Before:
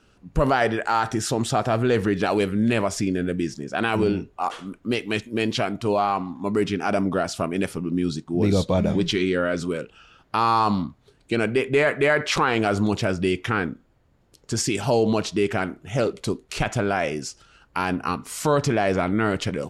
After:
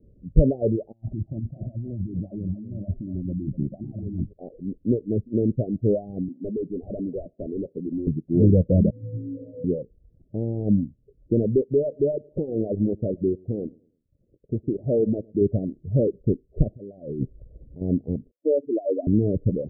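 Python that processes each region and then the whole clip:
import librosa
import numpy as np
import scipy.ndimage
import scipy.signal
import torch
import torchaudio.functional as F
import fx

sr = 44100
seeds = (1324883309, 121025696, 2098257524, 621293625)

y = fx.chain(x, sr, fx.fixed_phaser(hz=1700.0, stages=6),
    fx.over_compress(threshold_db=-34.0, ratio=-1.0),
    fx.echo_single(ms=246, db=-10.0), at=(0.92, 4.33))
y = fx.chain(y, sr, fx.highpass(hz=330.0, slope=12),
    fx.clip_hard(threshold_db=-26.0),
    fx.band_squash(depth_pct=40), at=(6.28, 8.07))
y = fx.chain(y, sr, fx.octave_resonator(note='B', decay_s=0.43),
    fx.room_flutter(wall_m=3.1, rt60_s=1.5), at=(8.9, 9.64))
y = fx.chain(y, sr, fx.transient(attack_db=0, sustain_db=-10),
    fx.low_shelf(hz=170.0, db=-11.0),
    fx.echo_feedback(ms=109, feedback_pct=36, wet_db=-16), at=(11.61, 15.41))
y = fx.chain(y, sr, fx.lowpass(hz=1300.0, slope=12),
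    fx.over_compress(threshold_db=-35.0, ratio=-1.0), at=(16.75, 17.81))
y = fx.chain(y, sr, fx.spec_expand(power=2.4),
    fx.ellip_highpass(hz=280.0, order=4, stop_db=40), at=(18.31, 19.07))
y = scipy.signal.sosfilt(scipy.signal.butter(12, 590.0, 'lowpass', fs=sr, output='sos'), y)
y = fx.dereverb_blind(y, sr, rt60_s=0.61)
y = fx.low_shelf(y, sr, hz=190.0, db=10.0)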